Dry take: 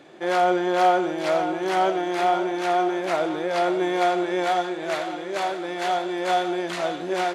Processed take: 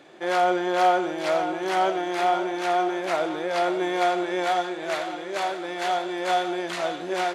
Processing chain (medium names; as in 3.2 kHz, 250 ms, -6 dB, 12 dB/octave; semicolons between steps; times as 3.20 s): bass shelf 380 Hz -5 dB